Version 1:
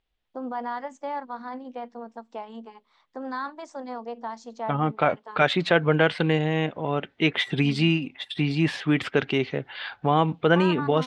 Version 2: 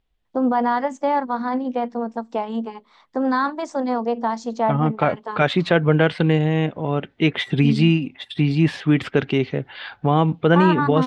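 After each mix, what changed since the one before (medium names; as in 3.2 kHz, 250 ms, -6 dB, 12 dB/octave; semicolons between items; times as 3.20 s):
first voice +9.5 dB; master: add bass shelf 380 Hz +8 dB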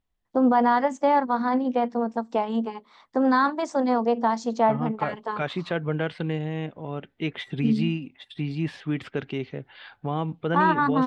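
second voice -10.5 dB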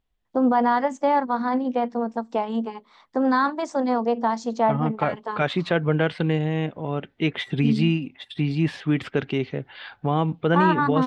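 second voice +5.5 dB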